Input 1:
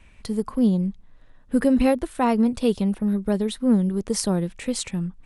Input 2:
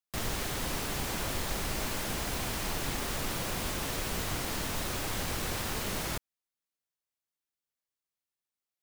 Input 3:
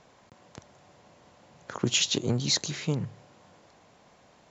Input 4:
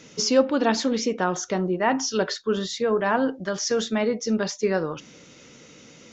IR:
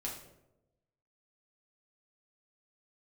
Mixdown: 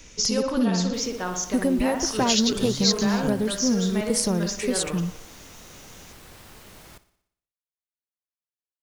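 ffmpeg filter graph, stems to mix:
-filter_complex "[0:a]highshelf=f=4.8k:g=-11.5,volume=1.5dB[a];[1:a]adelay=800,volume=-13dB,asplit=2[b][c];[c]volume=-16.5dB[d];[2:a]equalizer=f=5k:t=o:w=0.71:g=11.5,adelay=350,volume=-4dB[e];[3:a]volume=-6.5dB,asplit=2[f][g];[g]volume=-6dB[h];[a][f]amix=inputs=2:normalize=0,aemphasis=mode=production:type=75fm,acompressor=threshold=-19dB:ratio=6,volume=0dB[i];[d][h]amix=inputs=2:normalize=0,aecho=0:1:60|120|180|240|300|360|420|480|540:1|0.57|0.325|0.185|0.106|0.0602|0.0343|0.0195|0.0111[j];[b][e][i][j]amix=inputs=4:normalize=0"

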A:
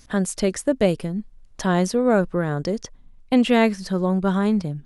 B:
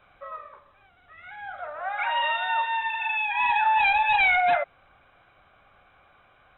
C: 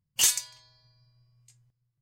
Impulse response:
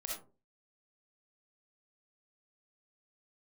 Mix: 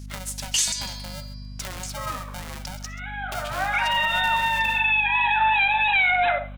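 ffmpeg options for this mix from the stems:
-filter_complex "[0:a]highpass=f=350:p=1,acompressor=threshold=-28dB:ratio=10,aeval=exprs='val(0)*sgn(sin(2*PI*370*n/s))':c=same,volume=-10dB,asplit=3[a][b][c];[b]volume=-13dB[d];[c]volume=-14dB[e];[1:a]adelay=1750,volume=0.5dB,asplit=2[f][g];[g]volume=-9.5dB[h];[2:a]dynaudnorm=f=110:g=7:m=16dB,lowpass=7.4k,adelay=350,volume=-2dB[i];[3:a]atrim=start_sample=2205[j];[d][h]amix=inputs=2:normalize=0[k];[k][j]afir=irnorm=-1:irlink=0[l];[e]aecho=0:1:132:1[m];[a][f][i][l][m]amix=inputs=5:normalize=0,highshelf=f=2k:g=11,aeval=exprs='val(0)+0.0158*(sin(2*PI*50*n/s)+sin(2*PI*2*50*n/s)/2+sin(2*PI*3*50*n/s)/3+sin(2*PI*4*50*n/s)/4+sin(2*PI*5*50*n/s)/5)':c=same,alimiter=limit=-13.5dB:level=0:latency=1:release=91"

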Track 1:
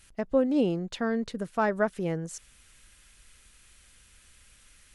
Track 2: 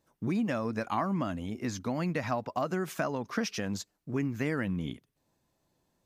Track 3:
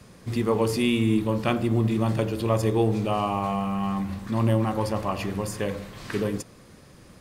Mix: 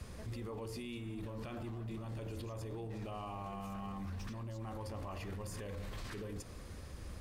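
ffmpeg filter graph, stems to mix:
-filter_complex "[0:a]volume=-13dB[a];[1:a]adelay=750,volume=-2.5dB[b];[2:a]lowshelf=f=100:t=q:w=1.5:g=11,acompressor=threshold=-28dB:ratio=6,volume=-2dB[c];[a][b]amix=inputs=2:normalize=0,asoftclip=type=tanh:threshold=-35.5dB,alimiter=level_in=20.5dB:limit=-24dB:level=0:latency=1,volume=-20.5dB,volume=0dB[d];[c][d]amix=inputs=2:normalize=0,alimiter=level_in=12.5dB:limit=-24dB:level=0:latency=1:release=19,volume=-12.5dB"

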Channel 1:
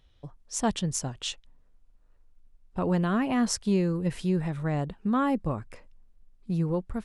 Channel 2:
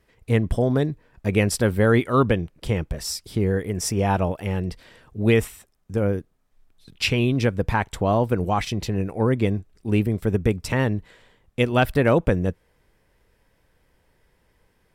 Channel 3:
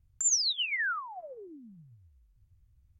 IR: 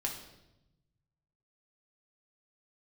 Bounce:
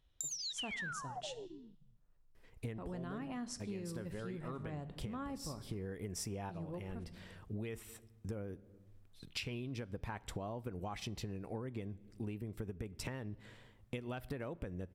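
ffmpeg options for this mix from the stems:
-filter_complex "[0:a]volume=-12.5dB,asplit=3[a][b][c];[b]volume=-11dB[d];[1:a]acompressor=threshold=-21dB:ratio=6,adelay=2350,volume=-6.5dB,asplit=2[e][f];[f]volume=-19dB[g];[2:a]afwtdn=0.0158,highpass=340,acompressor=threshold=-34dB:ratio=6,volume=2dB[h];[c]apad=whole_len=762710[i];[e][i]sidechaincompress=threshold=-47dB:ratio=8:attack=6.5:release=410[j];[3:a]atrim=start_sample=2205[k];[d][g]amix=inputs=2:normalize=0[l];[l][k]afir=irnorm=-1:irlink=0[m];[a][j][h][m]amix=inputs=4:normalize=0,acompressor=threshold=-40dB:ratio=5"

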